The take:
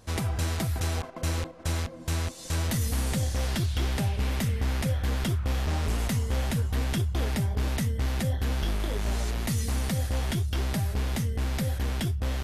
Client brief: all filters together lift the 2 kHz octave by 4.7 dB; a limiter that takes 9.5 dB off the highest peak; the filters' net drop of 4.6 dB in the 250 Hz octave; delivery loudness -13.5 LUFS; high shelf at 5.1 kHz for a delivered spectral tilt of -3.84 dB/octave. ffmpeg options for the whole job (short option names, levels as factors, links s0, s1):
-af "equalizer=f=250:t=o:g=-7,equalizer=f=2000:t=o:g=4.5,highshelf=f=5100:g=8.5,volume=9.44,alimiter=limit=0.596:level=0:latency=1"